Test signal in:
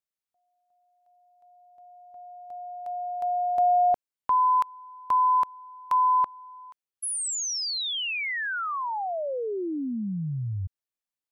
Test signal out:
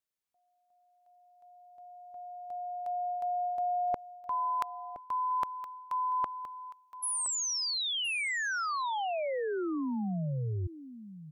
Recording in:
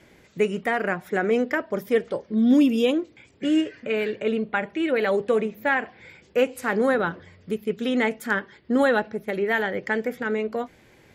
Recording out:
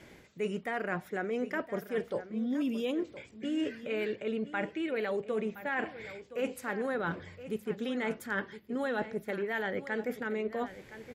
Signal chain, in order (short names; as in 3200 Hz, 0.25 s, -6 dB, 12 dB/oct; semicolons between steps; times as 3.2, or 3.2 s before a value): reverse; compressor 6:1, threshold -31 dBFS; reverse; echo 1.018 s -14 dB